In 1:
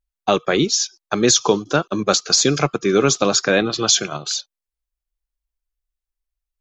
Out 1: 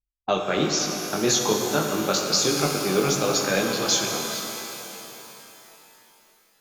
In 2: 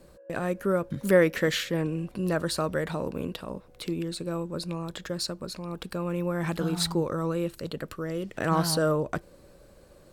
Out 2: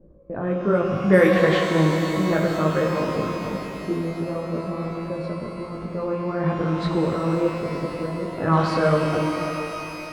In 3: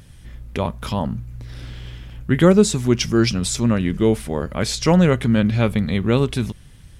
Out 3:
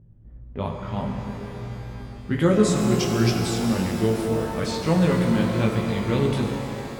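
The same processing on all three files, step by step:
low-pass that shuts in the quiet parts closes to 370 Hz, open at −16 dBFS
chorus effect 1.2 Hz, delay 17.5 ms, depth 4.4 ms
reverb with rising layers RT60 3.5 s, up +12 semitones, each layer −8 dB, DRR 2 dB
loudness normalisation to −23 LKFS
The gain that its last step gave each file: −4.5, +7.0, −4.0 decibels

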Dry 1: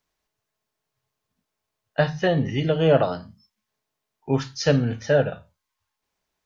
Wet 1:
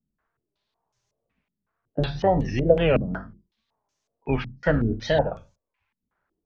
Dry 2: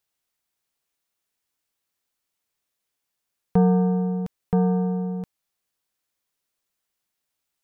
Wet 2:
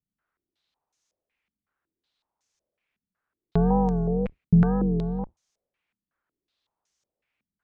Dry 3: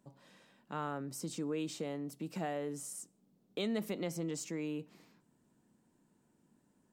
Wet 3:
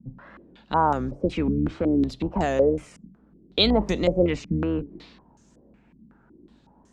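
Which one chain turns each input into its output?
sub-octave generator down 2 octaves, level −5 dB
downward compressor 1.5 to 1, threshold −26 dBFS
tape wow and flutter 130 cents
low-pass on a step sequencer 5.4 Hz 210–6,300 Hz
loudness normalisation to −24 LKFS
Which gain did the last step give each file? +0.5, 0.0, +13.0 decibels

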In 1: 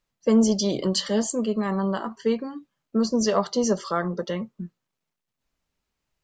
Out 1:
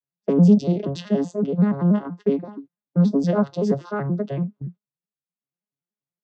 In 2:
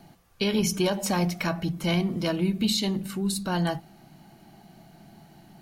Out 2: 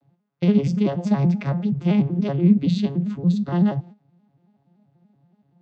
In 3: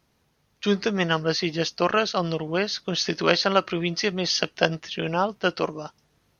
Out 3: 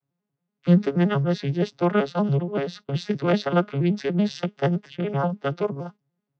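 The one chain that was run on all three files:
vocoder with an arpeggio as carrier major triad, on C#3, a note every 95 ms
noise gate −44 dBFS, range −15 dB
high-frequency loss of the air 74 metres
normalise the peak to −6 dBFS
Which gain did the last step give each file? +4.5, +7.5, +2.5 decibels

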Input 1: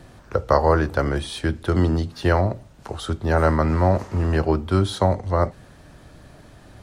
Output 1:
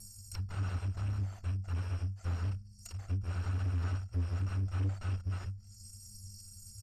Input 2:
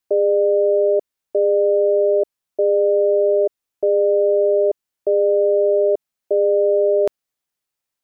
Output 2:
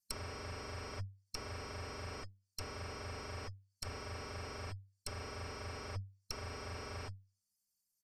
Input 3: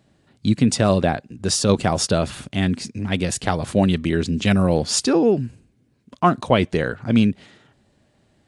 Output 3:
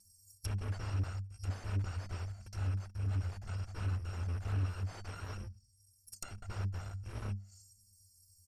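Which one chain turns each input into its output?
samples in bit-reversed order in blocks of 256 samples
linear-phase brick-wall band-stop 210–4,200 Hz
downsampling to 32,000 Hz
in parallel at −2.5 dB: output level in coarse steps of 19 dB
on the sum: stiff-string resonator 96 Hz, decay 0.37 s, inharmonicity 0.03
tube saturation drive 39 dB, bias 0.4
treble cut that deepens with the level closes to 1,400 Hz, closed at −43.5 dBFS
level +11 dB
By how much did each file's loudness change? −15.0, −28.0, −19.5 LU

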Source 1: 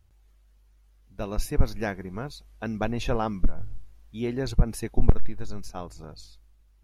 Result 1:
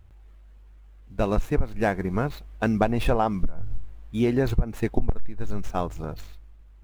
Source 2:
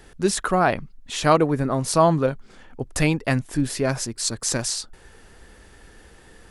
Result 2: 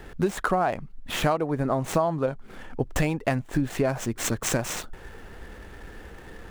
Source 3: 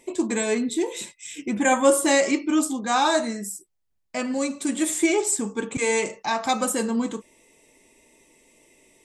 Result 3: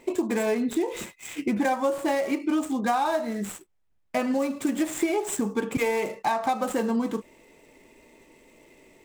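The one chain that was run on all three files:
running median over 9 samples
dynamic equaliser 740 Hz, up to +6 dB, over −34 dBFS, Q 1.5
downward compressor 10 to 1, threshold −27 dBFS
loudness normalisation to −27 LKFS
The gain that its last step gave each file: +9.5, +6.0, +5.5 decibels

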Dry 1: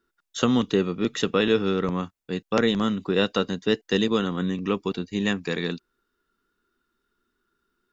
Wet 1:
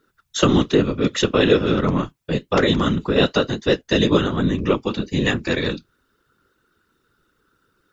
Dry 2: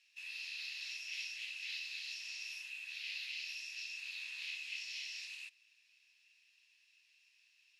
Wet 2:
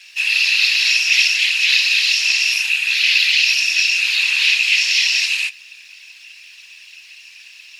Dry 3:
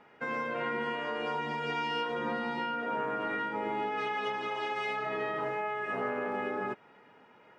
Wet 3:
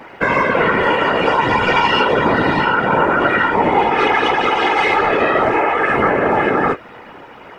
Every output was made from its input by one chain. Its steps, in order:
in parallel at 0 dB: downward compressor, threshold −34 dBFS
on the sum: flanger 1.1 Hz, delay 6 ms, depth 4 ms, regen −61%
random phases in short frames
normalise the peak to −1.5 dBFS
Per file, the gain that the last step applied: +8.0, +27.0, +18.5 decibels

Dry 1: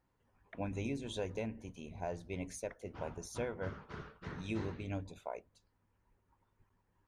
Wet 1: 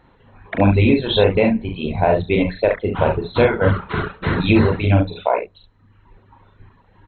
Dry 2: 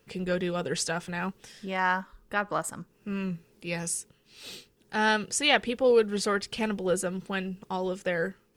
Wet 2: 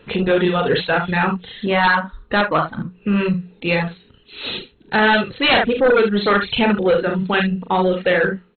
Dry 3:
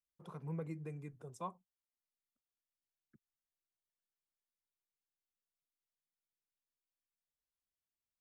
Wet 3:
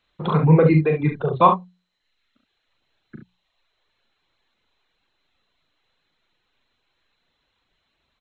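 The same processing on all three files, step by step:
on a send: ambience of single reflections 39 ms −4.5 dB, 70 ms −5 dB
on the sum: reverb reduction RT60 0.89 s
in parallel at +2 dB: downward compressor, threshold −33 dBFS
on the sum: mains-hum notches 60/120/180 Hz
sine wavefolder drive 10 dB, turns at −6 dBFS
MP2 32 kbit/s 16,000 Hz
loudness normalisation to −18 LKFS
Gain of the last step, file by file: +3.5, −3.5, +7.5 decibels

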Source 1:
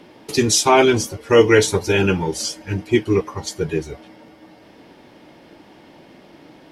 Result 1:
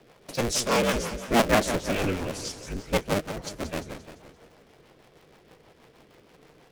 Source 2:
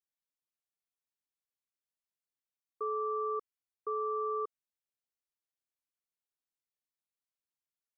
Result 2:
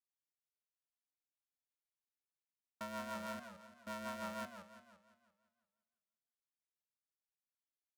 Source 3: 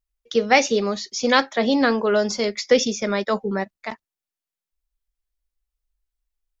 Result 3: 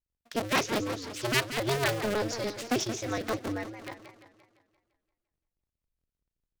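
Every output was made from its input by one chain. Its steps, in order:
sub-harmonics by changed cycles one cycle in 2, inverted
rotating-speaker cabinet horn 6.3 Hz
feedback echo with a swinging delay time 172 ms, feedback 51%, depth 219 cents, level −10 dB
level −8 dB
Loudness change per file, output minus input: −9.0, −10.0, −9.5 LU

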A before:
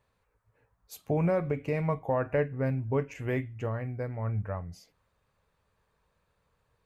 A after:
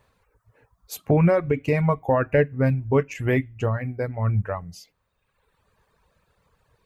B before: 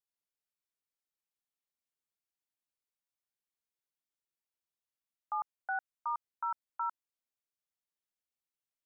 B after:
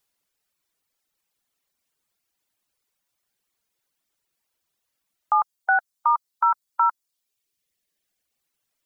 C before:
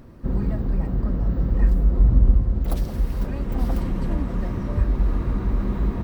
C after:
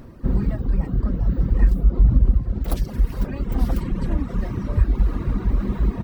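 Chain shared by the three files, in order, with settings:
reverb reduction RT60 1.2 s
dynamic equaliser 690 Hz, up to −3 dB, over −41 dBFS, Q 0.89
boost into a limiter +9.5 dB
loudness normalisation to −23 LKFS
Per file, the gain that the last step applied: +1.5, +8.0, −5.0 decibels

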